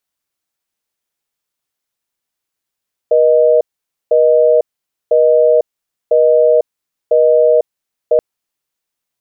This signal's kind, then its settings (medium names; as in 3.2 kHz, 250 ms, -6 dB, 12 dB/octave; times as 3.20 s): call progress tone busy tone, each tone -9.5 dBFS 5.08 s